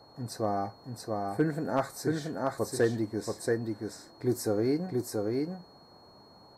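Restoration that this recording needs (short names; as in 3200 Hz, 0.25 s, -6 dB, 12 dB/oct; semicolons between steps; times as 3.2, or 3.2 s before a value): clip repair -16.5 dBFS; notch 4300 Hz, Q 30; noise print and reduce 21 dB; inverse comb 0.68 s -3 dB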